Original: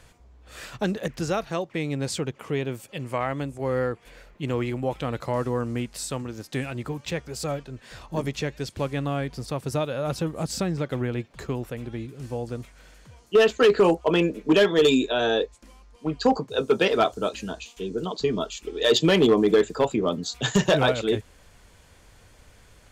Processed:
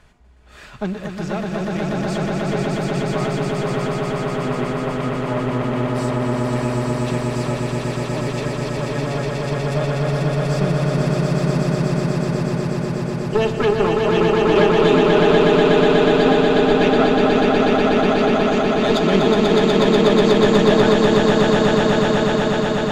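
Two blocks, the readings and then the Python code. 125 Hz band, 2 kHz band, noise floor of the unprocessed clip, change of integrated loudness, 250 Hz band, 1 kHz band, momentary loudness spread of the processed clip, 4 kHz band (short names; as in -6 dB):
+10.0 dB, +7.5 dB, -55 dBFS, +7.5 dB, +9.0 dB, +9.5 dB, 9 LU, +4.5 dB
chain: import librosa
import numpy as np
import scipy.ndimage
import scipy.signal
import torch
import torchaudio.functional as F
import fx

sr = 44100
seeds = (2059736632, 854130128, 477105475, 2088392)

y = fx.diode_clip(x, sr, knee_db=-23.5)
y = fx.lowpass(y, sr, hz=2600.0, slope=6)
y = fx.peak_eq(y, sr, hz=490.0, db=-8.5, octaves=0.21)
y = y + 0.34 * np.pad(y, (int(4.8 * sr / 1000.0), 0))[:len(y)]
y = fx.echo_swell(y, sr, ms=122, loudest=8, wet_db=-3)
y = y * librosa.db_to_amplitude(2.0)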